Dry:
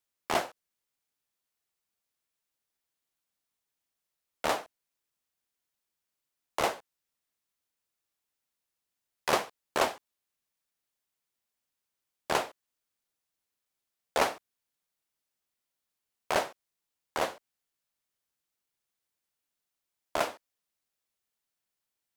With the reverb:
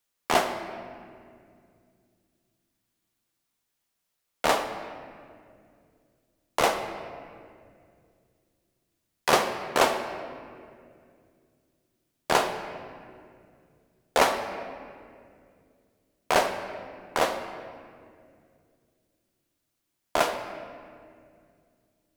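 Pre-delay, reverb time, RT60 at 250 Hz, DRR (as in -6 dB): 4 ms, 2.3 s, 3.2 s, 6.0 dB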